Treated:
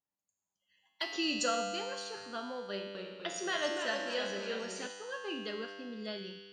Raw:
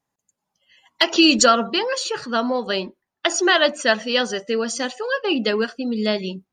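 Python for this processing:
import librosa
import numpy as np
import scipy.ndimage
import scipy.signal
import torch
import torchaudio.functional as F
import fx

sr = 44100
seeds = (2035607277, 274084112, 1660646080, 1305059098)

y = fx.comb_fb(x, sr, f0_hz=99.0, decay_s=1.8, harmonics='all', damping=0.0, mix_pct=90)
y = fx.echo_pitch(y, sr, ms=247, semitones=-1, count=3, db_per_echo=-6.0, at=(2.7, 4.87))
y = y * 10.0 ** (-2.0 / 20.0)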